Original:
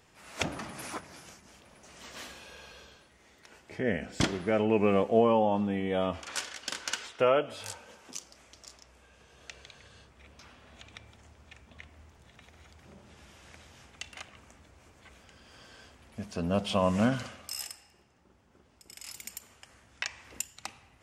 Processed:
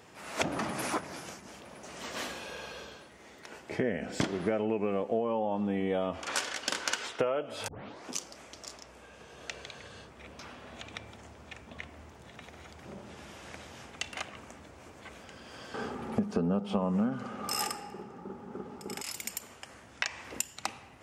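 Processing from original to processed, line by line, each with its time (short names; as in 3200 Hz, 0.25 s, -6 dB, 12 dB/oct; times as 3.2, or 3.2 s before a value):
7.68 tape start 0.43 s
15.74–19.02 small resonant body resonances 210/400/820/1200 Hz, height 16 dB, ringing for 25 ms
whole clip: HPF 220 Hz 6 dB/oct; tilt shelf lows +3.5 dB, about 1200 Hz; compressor 20:1, threshold -34 dBFS; gain +8 dB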